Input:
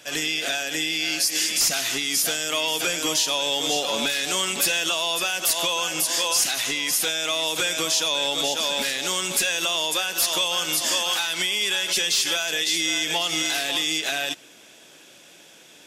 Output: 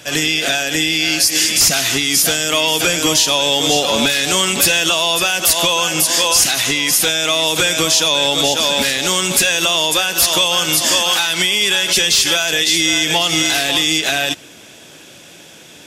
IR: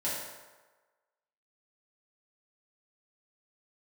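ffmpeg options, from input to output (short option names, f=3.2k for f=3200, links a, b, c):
-af "equalizer=f=64:w=0.51:g=14,volume=8.5dB"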